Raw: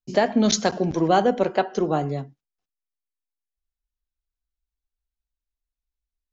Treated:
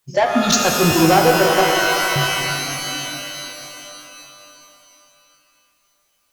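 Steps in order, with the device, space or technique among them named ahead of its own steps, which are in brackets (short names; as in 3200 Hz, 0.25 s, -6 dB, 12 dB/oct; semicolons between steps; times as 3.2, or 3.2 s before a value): spectral noise reduction 18 dB; 1.72–2.16 HPF 1300 Hz; open-reel tape (soft clip -18.5 dBFS, distortion -11 dB; bell 130 Hz +3 dB; white noise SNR 47 dB); shimmer reverb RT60 3.3 s, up +12 st, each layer -2 dB, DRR 2 dB; gain +8.5 dB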